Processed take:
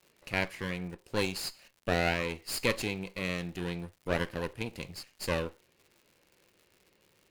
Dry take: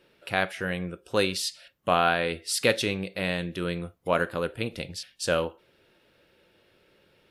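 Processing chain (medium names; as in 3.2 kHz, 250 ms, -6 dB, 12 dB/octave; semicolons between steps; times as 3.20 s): comb filter that takes the minimum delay 0.42 ms; gate with hold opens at -55 dBFS; crackle 150 per s -43 dBFS; trim -5.5 dB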